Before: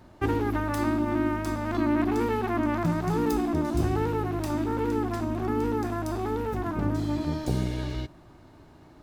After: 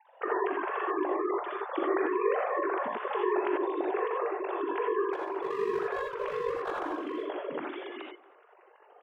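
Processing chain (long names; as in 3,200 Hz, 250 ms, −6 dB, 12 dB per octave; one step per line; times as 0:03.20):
three sine waves on the formant tracks
high-pass filter 540 Hz 12 dB per octave
0:05.13–0:07.28: gain into a clipping stage and back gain 29.5 dB
ring modulation 24 Hz
slap from a distant wall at 40 metres, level −25 dB
reverb whose tail is shaped and stops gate 110 ms rising, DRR −0.5 dB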